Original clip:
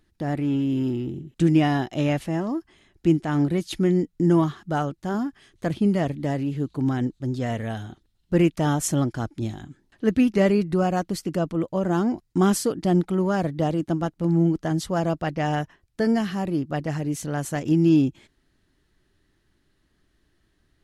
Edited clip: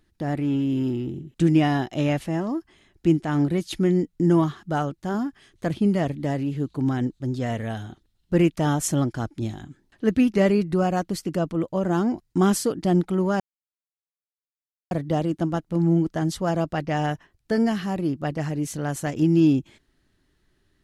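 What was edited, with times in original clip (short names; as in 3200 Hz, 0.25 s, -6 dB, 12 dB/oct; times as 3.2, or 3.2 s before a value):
13.4 insert silence 1.51 s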